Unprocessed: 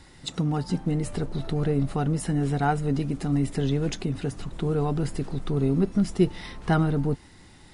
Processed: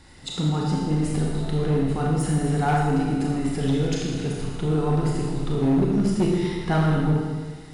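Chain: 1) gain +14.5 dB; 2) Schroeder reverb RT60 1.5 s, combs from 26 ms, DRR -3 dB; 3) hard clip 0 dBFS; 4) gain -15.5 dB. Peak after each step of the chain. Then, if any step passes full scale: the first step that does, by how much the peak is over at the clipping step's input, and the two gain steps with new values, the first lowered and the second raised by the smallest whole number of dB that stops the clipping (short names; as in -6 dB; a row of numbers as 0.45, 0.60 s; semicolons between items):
+5.5, +8.5, 0.0, -15.5 dBFS; step 1, 8.5 dB; step 1 +5.5 dB, step 4 -6.5 dB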